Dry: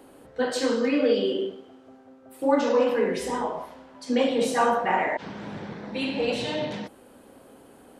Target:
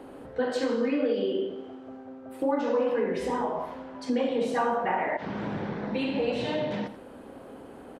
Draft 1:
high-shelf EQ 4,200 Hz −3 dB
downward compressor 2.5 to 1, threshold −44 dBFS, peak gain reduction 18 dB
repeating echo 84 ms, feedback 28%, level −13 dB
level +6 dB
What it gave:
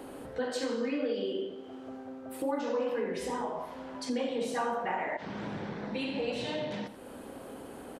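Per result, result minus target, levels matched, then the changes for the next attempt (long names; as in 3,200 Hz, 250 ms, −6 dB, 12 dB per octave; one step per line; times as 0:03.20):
8,000 Hz band +9.0 dB; downward compressor: peak gain reduction +6 dB
change: high-shelf EQ 4,200 Hz −14.5 dB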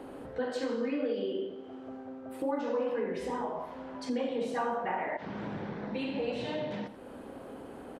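downward compressor: peak gain reduction +5.5 dB
change: downward compressor 2.5 to 1, threshold −34.5 dBFS, peak gain reduction 12.5 dB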